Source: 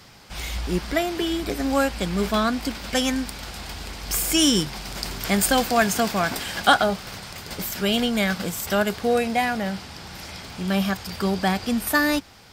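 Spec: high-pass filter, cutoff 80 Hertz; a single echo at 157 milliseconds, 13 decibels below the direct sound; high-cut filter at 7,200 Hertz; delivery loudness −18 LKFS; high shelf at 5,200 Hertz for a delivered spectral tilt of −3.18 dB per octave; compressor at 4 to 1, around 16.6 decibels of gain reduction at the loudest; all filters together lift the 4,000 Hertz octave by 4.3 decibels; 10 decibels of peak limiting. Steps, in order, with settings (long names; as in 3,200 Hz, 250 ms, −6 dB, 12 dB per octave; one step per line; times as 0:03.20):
high-pass filter 80 Hz
low-pass filter 7,200 Hz
parametric band 4,000 Hz +4.5 dB
high-shelf EQ 5,200 Hz +4 dB
downward compressor 4 to 1, threshold −30 dBFS
brickwall limiter −22 dBFS
single-tap delay 157 ms −13 dB
level +14.5 dB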